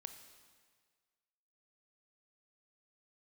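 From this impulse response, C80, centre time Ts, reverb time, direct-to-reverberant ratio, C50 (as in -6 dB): 10.5 dB, 21 ms, 1.7 s, 7.5 dB, 9.0 dB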